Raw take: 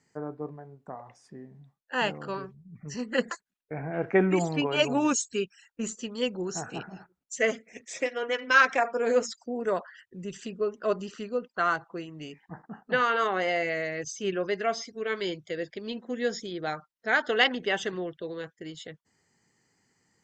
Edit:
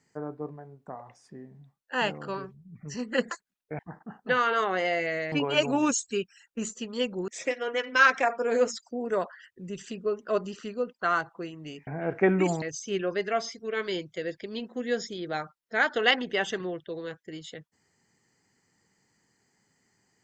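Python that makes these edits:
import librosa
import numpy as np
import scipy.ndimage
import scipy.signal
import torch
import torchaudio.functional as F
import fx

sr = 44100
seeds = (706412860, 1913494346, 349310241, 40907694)

y = fx.edit(x, sr, fx.swap(start_s=3.79, length_s=0.75, other_s=12.42, other_length_s=1.53),
    fx.cut(start_s=6.5, length_s=1.33), tone=tone)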